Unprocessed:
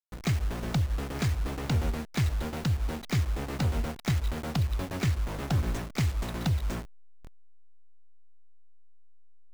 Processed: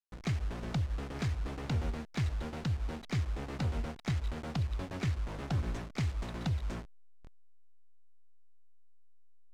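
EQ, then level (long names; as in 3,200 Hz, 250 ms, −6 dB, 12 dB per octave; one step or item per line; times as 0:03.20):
high-frequency loss of the air 51 metres
−5.5 dB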